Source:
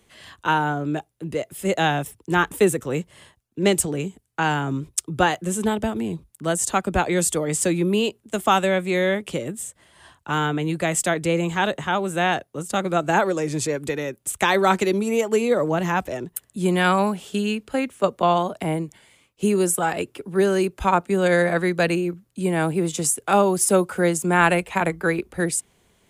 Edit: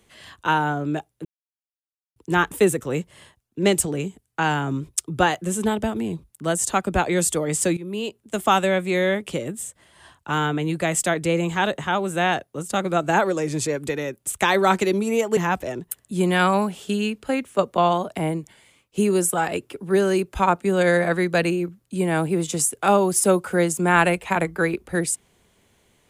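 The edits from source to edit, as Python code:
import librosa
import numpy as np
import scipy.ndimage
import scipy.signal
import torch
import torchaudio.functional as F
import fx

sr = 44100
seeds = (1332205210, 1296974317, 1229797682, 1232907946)

y = fx.edit(x, sr, fx.silence(start_s=1.25, length_s=0.91),
    fx.fade_in_from(start_s=7.77, length_s=0.63, floor_db=-17.0),
    fx.cut(start_s=15.37, length_s=0.45), tone=tone)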